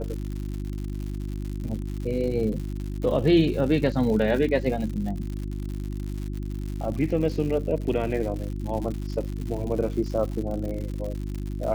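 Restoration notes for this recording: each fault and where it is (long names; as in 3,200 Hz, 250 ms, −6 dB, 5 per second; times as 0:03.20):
surface crackle 150 per second −32 dBFS
mains hum 50 Hz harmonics 7 −31 dBFS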